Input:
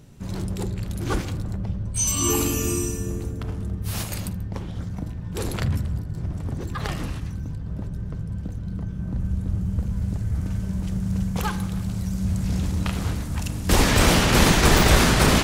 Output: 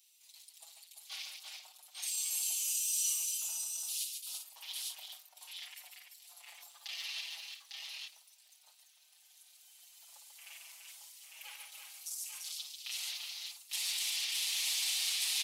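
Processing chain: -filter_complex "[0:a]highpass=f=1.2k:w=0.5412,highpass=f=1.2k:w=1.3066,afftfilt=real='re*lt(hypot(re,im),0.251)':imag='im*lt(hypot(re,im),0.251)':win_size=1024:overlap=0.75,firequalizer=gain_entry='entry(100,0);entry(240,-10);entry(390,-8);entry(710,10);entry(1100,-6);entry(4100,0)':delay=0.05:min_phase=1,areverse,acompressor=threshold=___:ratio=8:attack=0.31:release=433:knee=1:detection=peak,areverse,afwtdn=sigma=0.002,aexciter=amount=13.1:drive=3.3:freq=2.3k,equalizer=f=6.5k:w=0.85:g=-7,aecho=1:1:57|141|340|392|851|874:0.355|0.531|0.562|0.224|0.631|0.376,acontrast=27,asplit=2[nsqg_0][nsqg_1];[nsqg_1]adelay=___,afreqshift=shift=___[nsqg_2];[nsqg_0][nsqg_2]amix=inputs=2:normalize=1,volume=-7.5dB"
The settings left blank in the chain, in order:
-42dB, 5.5, -0.28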